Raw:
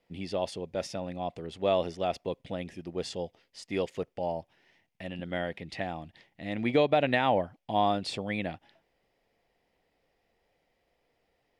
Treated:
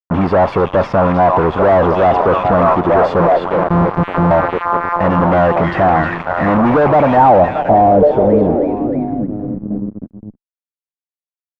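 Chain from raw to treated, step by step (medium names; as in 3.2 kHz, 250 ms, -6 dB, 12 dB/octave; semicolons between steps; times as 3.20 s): 3.20–4.31 s: sorted samples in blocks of 256 samples; repeats whose band climbs or falls 313 ms, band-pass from 2.9 kHz, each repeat -0.7 oct, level -1 dB; fuzz box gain 47 dB, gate -47 dBFS; low-pass sweep 1.1 kHz -> 230 Hz, 6.89–9.47 s; trim +2.5 dB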